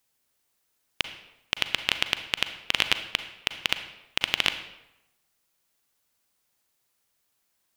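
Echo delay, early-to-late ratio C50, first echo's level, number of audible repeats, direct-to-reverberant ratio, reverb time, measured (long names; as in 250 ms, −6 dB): no echo audible, 10.5 dB, no echo audible, no echo audible, 9.0 dB, 0.90 s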